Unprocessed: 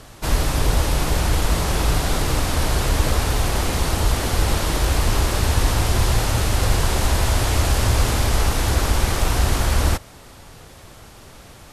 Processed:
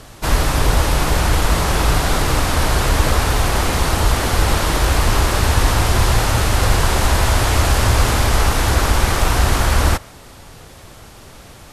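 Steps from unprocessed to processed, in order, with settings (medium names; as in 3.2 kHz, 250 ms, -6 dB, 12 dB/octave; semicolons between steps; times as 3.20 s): dynamic bell 1.3 kHz, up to +4 dB, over -38 dBFS, Q 0.74; trim +3 dB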